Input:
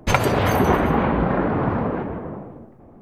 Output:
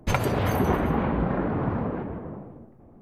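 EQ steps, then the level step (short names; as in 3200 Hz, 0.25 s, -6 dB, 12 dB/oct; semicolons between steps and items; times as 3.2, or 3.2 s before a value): low shelf 330 Hz +5 dB; bell 12000 Hz +4 dB 0.58 oct; -8.0 dB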